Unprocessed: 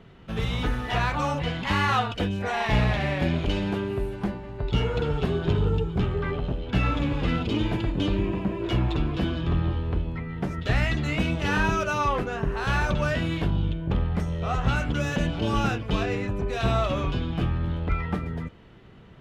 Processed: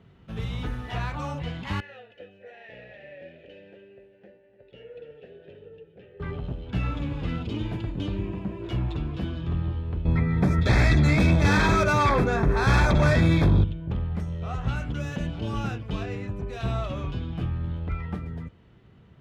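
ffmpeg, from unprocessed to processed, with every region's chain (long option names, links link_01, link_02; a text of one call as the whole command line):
ffmpeg -i in.wav -filter_complex "[0:a]asettb=1/sr,asplit=3[link_01][link_02][link_03];[link_01]atrim=end=1.804[link_04];[link_02]atrim=start=1.8:end=6.2,asetpts=PTS-STARTPTS,afade=type=in:duration=0.004:curve=qsin,afade=type=out:start_time=4.396:duration=0.004:curve=qsin,asplit=3[link_05][link_06][link_07];[link_05]bandpass=frequency=530:width_type=q:width=8,volume=0dB[link_08];[link_06]bandpass=frequency=1840:width_type=q:width=8,volume=-6dB[link_09];[link_07]bandpass=frequency=2480:width_type=q:width=8,volume=-9dB[link_10];[link_08][link_09][link_10]amix=inputs=3:normalize=0,aecho=1:1:298:0.168,atrim=end_sample=194040[link_11];[link_03]atrim=start=6.196[link_12];[link_04][link_11]acrossfade=duration=0.004:curve1=hsin:curve2=qsin[link_13];[link_13][link_12]acrossfade=duration=0.004:curve1=qsin:curve2=hsin,asettb=1/sr,asplit=3[link_14][link_15][link_16];[link_14]atrim=end=10.054[link_17];[link_15]atrim=start=10.05:end=13.64,asetpts=PTS-STARTPTS,afade=type=in:duration=0.004:curve=qsin,afade=type=out:start_time=3.586:duration=0.004:curve=qsin,aeval=exprs='0.316*sin(PI/2*3.16*val(0)/0.316)':channel_layout=same,asuperstop=centerf=2900:order=12:qfactor=5.9[link_18];[link_16]atrim=start=13.636[link_19];[link_17][link_18]acrossfade=duration=0.004:curve1=hsin:curve2=qsin[link_20];[link_20][link_19]acrossfade=duration=0.004:curve1=qsin:curve2=hsin,highpass=70,lowshelf=frequency=130:gain=11.5,volume=-8dB" out.wav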